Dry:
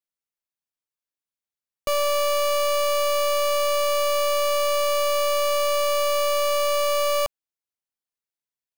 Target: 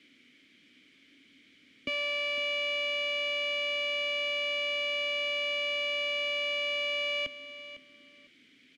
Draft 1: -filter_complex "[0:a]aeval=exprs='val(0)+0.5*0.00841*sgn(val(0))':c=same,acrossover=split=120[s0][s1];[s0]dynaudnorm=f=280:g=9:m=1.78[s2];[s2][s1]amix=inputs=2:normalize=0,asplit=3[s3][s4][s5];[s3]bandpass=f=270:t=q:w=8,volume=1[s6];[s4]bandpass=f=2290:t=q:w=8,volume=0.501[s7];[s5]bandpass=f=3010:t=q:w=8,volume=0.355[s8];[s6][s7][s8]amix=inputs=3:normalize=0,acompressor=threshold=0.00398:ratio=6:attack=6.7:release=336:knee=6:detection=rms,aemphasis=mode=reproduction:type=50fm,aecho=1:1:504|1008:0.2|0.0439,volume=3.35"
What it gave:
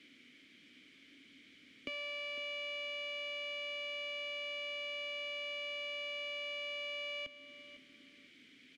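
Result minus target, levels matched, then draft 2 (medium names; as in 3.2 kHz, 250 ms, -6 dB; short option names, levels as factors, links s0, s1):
compression: peak gain reduction +10 dB
-filter_complex "[0:a]aeval=exprs='val(0)+0.5*0.00841*sgn(val(0))':c=same,acrossover=split=120[s0][s1];[s0]dynaudnorm=f=280:g=9:m=1.78[s2];[s2][s1]amix=inputs=2:normalize=0,asplit=3[s3][s4][s5];[s3]bandpass=f=270:t=q:w=8,volume=1[s6];[s4]bandpass=f=2290:t=q:w=8,volume=0.501[s7];[s5]bandpass=f=3010:t=q:w=8,volume=0.355[s8];[s6][s7][s8]amix=inputs=3:normalize=0,aemphasis=mode=reproduction:type=50fm,aecho=1:1:504|1008:0.2|0.0439,volume=3.35"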